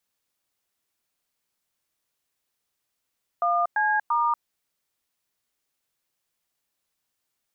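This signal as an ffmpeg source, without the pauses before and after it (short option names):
-f lavfi -i "aevalsrc='0.075*clip(min(mod(t,0.341),0.237-mod(t,0.341))/0.002,0,1)*(eq(floor(t/0.341),0)*(sin(2*PI*697*mod(t,0.341))+sin(2*PI*1209*mod(t,0.341)))+eq(floor(t/0.341),1)*(sin(2*PI*852*mod(t,0.341))+sin(2*PI*1633*mod(t,0.341)))+eq(floor(t/0.341),2)*(sin(2*PI*941*mod(t,0.341))+sin(2*PI*1209*mod(t,0.341))))':d=1.023:s=44100"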